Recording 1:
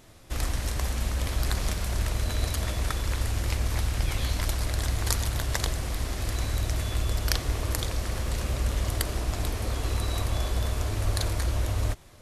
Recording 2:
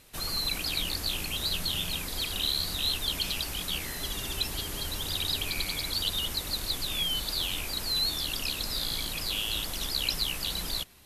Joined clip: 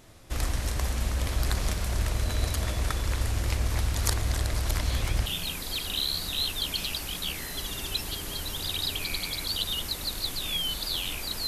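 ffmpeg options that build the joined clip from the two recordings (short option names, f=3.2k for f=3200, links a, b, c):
-filter_complex "[0:a]apad=whole_dur=11.47,atrim=end=11.47,asplit=2[a][b];[a]atrim=end=3.942[c];[b]atrim=start=3.938:end=5.262,asetpts=PTS-STARTPTS,areverse[d];[1:a]atrim=start=1.718:end=7.93[e];[c][d]acrossfade=d=0.004:c1=hsin:c2=hsin[f];[f][e]acrossfade=d=0.004:c1=hsin:c2=hsin"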